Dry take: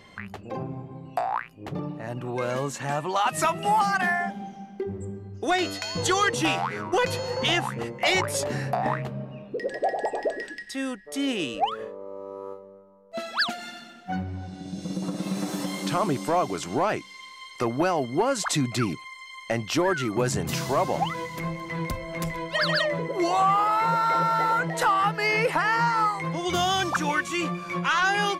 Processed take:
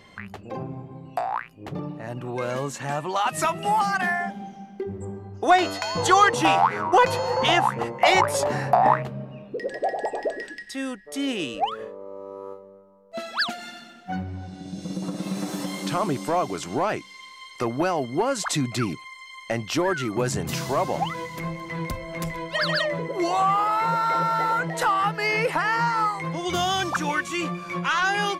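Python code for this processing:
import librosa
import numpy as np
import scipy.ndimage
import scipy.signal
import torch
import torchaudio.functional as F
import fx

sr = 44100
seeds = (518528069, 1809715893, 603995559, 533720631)

y = fx.peak_eq(x, sr, hz=900.0, db=11.0, octaves=1.3, at=(5.01, 9.03))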